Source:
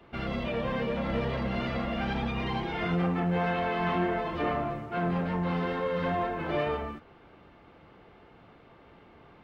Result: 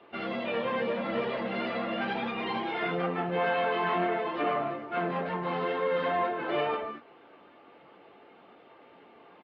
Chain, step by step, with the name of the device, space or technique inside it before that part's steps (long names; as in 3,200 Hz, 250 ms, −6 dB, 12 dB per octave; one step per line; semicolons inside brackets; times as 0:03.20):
high-pass filter 290 Hz 12 dB per octave
clip after many re-uploads (low-pass filter 4,300 Hz 24 dB per octave; spectral magnitudes quantised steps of 15 dB)
double-tracking delay 21 ms −11 dB
level +2 dB